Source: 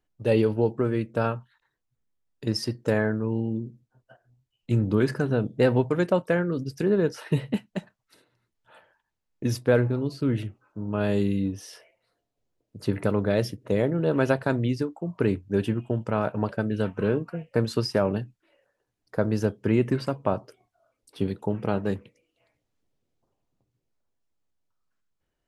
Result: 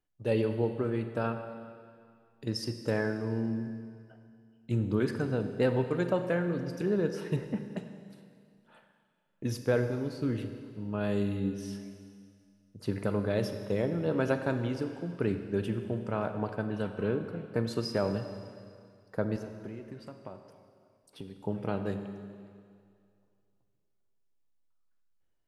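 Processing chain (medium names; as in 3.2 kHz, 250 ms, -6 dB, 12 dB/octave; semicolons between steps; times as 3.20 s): 7.36–7.77 s: low-pass 2 kHz 24 dB/octave; 19.36–21.45 s: compression 6:1, threshold -35 dBFS, peak gain reduction 17.5 dB; Schroeder reverb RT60 2.2 s, combs from 31 ms, DRR 7.5 dB; trim -6.5 dB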